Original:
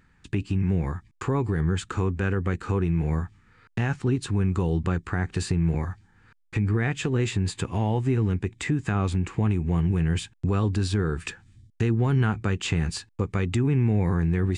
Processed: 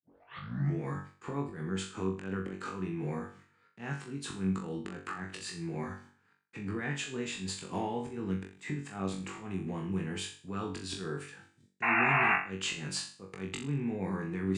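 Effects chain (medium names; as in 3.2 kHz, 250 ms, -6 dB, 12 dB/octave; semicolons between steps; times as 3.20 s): tape start-up on the opening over 0.83 s; gate -49 dBFS, range -15 dB; high-pass 150 Hz 24 dB/octave; compression 10:1, threshold -34 dBFS, peak gain reduction 14 dB; slow attack 134 ms; vibrato 0.8 Hz 7.7 cents; painted sound noise, 11.82–12.36 s, 640–2800 Hz -31 dBFS; on a send: flutter echo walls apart 3.6 m, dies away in 0.41 s; on the sum: trim +1.5 dB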